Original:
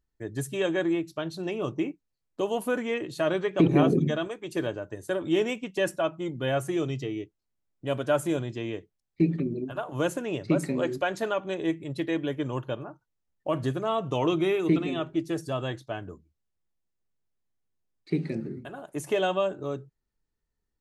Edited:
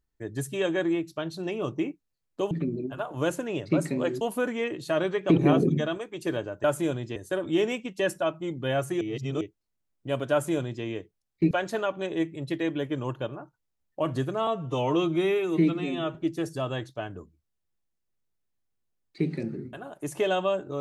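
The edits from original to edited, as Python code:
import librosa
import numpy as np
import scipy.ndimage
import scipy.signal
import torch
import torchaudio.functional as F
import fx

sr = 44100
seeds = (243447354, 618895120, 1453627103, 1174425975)

y = fx.edit(x, sr, fx.reverse_span(start_s=6.79, length_s=0.4),
    fx.duplicate(start_s=8.1, length_s=0.52, to_s=4.94),
    fx.move(start_s=9.29, length_s=1.7, to_s=2.51),
    fx.stretch_span(start_s=13.95, length_s=1.12, factor=1.5), tone=tone)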